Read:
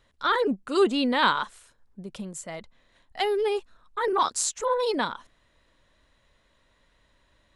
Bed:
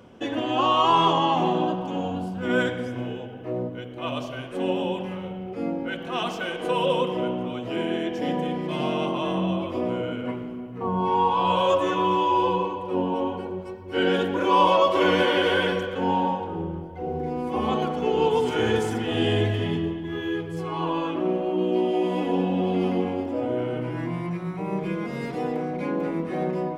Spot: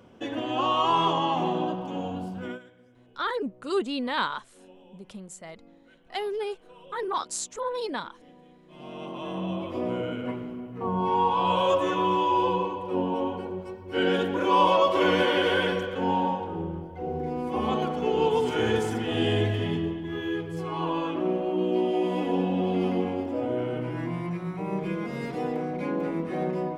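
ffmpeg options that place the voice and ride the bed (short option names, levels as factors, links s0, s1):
-filter_complex "[0:a]adelay=2950,volume=0.531[s0];[1:a]volume=11.2,afade=t=out:st=2.38:d=0.21:silence=0.0707946,afade=t=in:st=8.67:d=1.3:silence=0.0562341[s1];[s0][s1]amix=inputs=2:normalize=0"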